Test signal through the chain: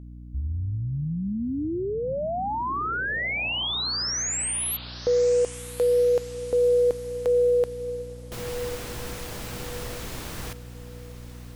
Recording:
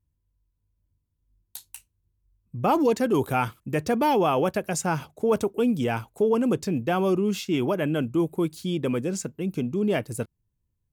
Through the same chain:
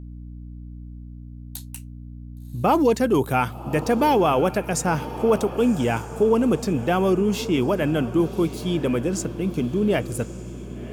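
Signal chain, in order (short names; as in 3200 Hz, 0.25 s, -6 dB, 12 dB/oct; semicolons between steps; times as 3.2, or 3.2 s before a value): hum 60 Hz, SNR 14 dB; diffused feedback echo 1.105 s, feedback 44%, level -14 dB; gain +3 dB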